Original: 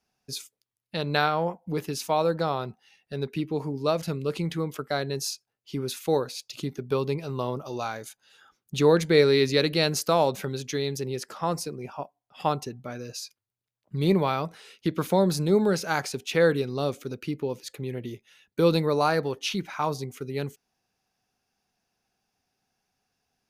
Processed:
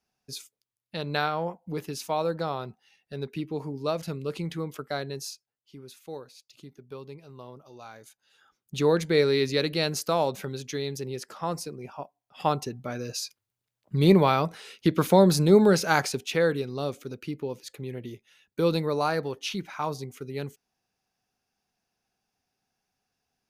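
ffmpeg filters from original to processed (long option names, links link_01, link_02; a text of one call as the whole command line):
ffmpeg -i in.wav -af "volume=15.5dB,afade=type=out:start_time=4.96:duration=0.79:silence=0.266073,afade=type=in:start_time=7.79:duration=1.01:silence=0.251189,afade=type=in:start_time=12:duration=1.21:silence=0.446684,afade=type=out:start_time=16:duration=0.43:silence=0.446684" out.wav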